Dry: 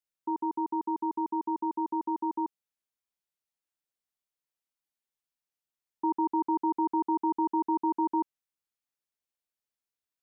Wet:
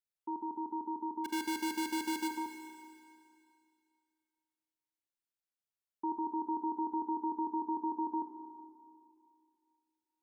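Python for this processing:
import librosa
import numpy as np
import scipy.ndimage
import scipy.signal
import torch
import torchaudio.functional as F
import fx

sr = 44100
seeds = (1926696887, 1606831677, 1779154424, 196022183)

y = fx.halfwave_hold(x, sr, at=(1.24, 2.27), fade=0.02)
y = fx.rev_schroeder(y, sr, rt60_s=2.4, comb_ms=32, drr_db=6.0)
y = y * librosa.db_to_amplitude(-7.5)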